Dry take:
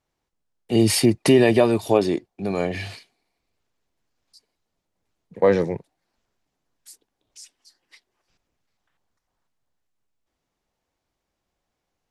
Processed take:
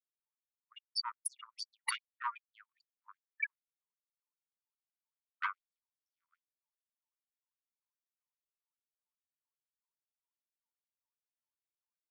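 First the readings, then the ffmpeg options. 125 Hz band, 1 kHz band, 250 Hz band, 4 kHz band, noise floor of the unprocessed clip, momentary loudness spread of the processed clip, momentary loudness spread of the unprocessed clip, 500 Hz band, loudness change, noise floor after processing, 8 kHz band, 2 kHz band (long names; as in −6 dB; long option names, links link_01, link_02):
below −40 dB, −12.5 dB, below −40 dB, −12.5 dB, −80 dBFS, 17 LU, 12 LU, below −40 dB, −20.0 dB, below −85 dBFS, −15.0 dB, −10.0 dB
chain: -af "tremolo=f=1.7:d=0.87,afftfilt=real='re*gte(hypot(re,im),0.1)':imag='im*gte(hypot(re,im),0.1)':win_size=1024:overlap=0.75,aecho=1:1:628:0.562,dynaudnorm=framelen=480:gausssize=5:maxgain=3dB,asoftclip=type=tanh:threshold=-16.5dB,aeval=exprs='val(0)+0.00562*(sin(2*PI*60*n/s)+sin(2*PI*2*60*n/s)/2+sin(2*PI*3*60*n/s)/3+sin(2*PI*4*60*n/s)/4+sin(2*PI*5*60*n/s)/5)':channel_layout=same,aecho=1:1:0.9:0.33,areverse,acompressor=threshold=-35dB:ratio=10,areverse,afftfilt=real='re*gte(b*sr/1024,890*pow(5300/890,0.5+0.5*sin(2*PI*2.5*pts/sr)))':imag='im*gte(b*sr/1024,890*pow(5300/890,0.5+0.5*sin(2*PI*2.5*pts/sr)))':win_size=1024:overlap=0.75,volume=16.5dB"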